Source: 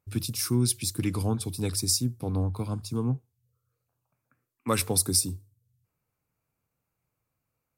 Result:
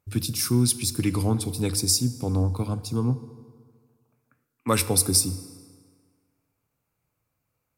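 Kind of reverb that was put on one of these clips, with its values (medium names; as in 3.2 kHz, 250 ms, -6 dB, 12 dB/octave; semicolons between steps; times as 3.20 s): FDN reverb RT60 1.8 s, low-frequency decay 0.95×, high-frequency decay 0.7×, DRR 13.5 dB; trim +3.5 dB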